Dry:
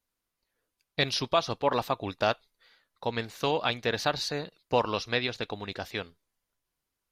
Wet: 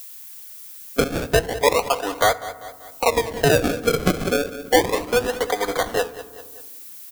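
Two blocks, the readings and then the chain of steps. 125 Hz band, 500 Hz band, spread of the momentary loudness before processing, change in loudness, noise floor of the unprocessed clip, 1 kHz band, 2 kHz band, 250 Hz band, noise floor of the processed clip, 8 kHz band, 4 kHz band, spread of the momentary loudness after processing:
+8.5 dB, +10.5 dB, 9 LU, +8.5 dB, −85 dBFS, +7.5 dB, +8.5 dB, +10.0 dB, −41 dBFS, +15.0 dB, +4.0 dB, 18 LU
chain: high-pass filter 410 Hz 24 dB per octave
noise gate −55 dBFS, range −21 dB
flat-topped bell 2,600 Hz −13.5 dB 1.2 octaves
harmonic and percussive parts rebalanced harmonic +8 dB
comb filter 4.1 ms, depth 80%
dynamic equaliser 6,500 Hz, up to −5 dB, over −46 dBFS, Q 1
sample-and-hold swept by an LFO 32×, swing 100% 0.31 Hz
automatic gain control gain up to 9.5 dB
background noise violet −54 dBFS
repeating echo 195 ms, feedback 29%, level −18 dB
feedback delay network reverb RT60 0.98 s, low-frequency decay 1.45×, high-frequency decay 0.45×, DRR 16.5 dB
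multiband upward and downward compressor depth 70%
level −1.5 dB

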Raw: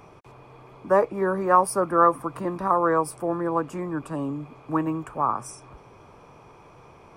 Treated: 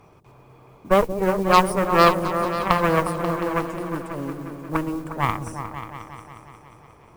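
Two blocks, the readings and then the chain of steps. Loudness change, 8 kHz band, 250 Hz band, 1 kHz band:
+2.5 dB, 0.0 dB, +2.5 dB, +2.0 dB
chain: harmonic generator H 3 −23 dB, 6 −14 dB, 7 −27 dB, 8 −25 dB, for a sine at −5 dBFS
low-shelf EQ 170 Hz +4.5 dB
on a send: echo whose low-pass opens from repeat to repeat 179 ms, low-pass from 400 Hz, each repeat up 2 octaves, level −6 dB
on the sum: noise that follows the level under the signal 25 dB
level +2.5 dB

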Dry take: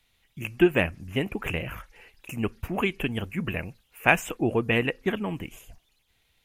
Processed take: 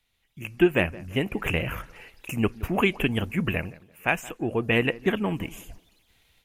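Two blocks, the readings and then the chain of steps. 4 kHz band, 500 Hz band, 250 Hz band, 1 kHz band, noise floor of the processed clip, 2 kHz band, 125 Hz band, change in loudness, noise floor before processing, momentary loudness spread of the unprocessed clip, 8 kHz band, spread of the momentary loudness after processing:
+2.0 dB, +1.0 dB, +1.5 dB, −1.0 dB, −72 dBFS, 0.0 dB, +2.0 dB, +1.0 dB, −69 dBFS, 15 LU, −1.0 dB, 16 LU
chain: automatic gain control gain up to 11 dB
tape delay 170 ms, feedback 34%, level −18 dB, low-pass 1,500 Hz
level −5.5 dB

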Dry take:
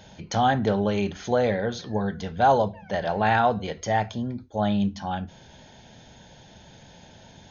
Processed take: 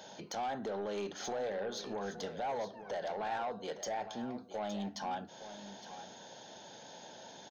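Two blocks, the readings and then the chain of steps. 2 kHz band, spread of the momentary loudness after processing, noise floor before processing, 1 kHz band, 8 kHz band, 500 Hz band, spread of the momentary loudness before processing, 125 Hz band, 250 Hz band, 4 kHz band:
−15.5 dB, 13 LU, −51 dBFS, −14.5 dB, can't be measured, −12.5 dB, 10 LU, −22.5 dB, −16.0 dB, −9.0 dB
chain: high-pass filter 370 Hz 12 dB per octave
parametric band 2,300 Hz −8 dB 0.89 octaves
downward compressor 2 to 1, threshold −39 dBFS, peak gain reduction 12.5 dB
brickwall limiter −28 dBFS, peak gain reduction 6.5 dB
soft clipping −33.5 dBFS, distortion −15 dB
on a send: single-tap delay 864 ms −12 dB
on the sum: level +2 dB

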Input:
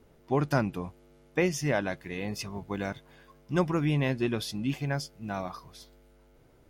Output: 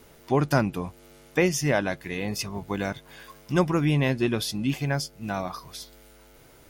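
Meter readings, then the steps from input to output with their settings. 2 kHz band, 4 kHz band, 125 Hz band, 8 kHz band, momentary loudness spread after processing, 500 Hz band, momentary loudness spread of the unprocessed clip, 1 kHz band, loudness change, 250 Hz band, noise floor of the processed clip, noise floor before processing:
+4.5 dB, +6.0 dB, +4.0 dB, +7.5 dB, 16 LU, +4.0 dB, 10 LU, +4.0 dB, +4.5 dB, +4.0 dB, −53 dBFS, −60 dBFS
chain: high-shelf EQ 5,800 Hz +5.5 dB
one half of a high-frequency compander encoder only
level +4 dB

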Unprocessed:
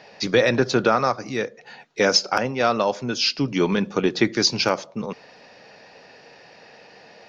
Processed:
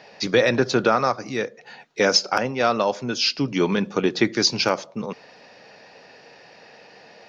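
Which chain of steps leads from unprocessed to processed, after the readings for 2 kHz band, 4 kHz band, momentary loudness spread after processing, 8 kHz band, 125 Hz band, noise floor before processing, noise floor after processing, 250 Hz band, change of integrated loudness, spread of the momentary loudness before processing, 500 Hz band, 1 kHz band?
0.0 dB, 0.0 dB, 14 LU, can't be measured, −1.0 dB, −49 dBFS, −49 dBFS, −0.5 dB, 0.0 dB, 14 LU, 0.0 dB, 0.0 dB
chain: low-shelf EQ 66 Hz −6 dB

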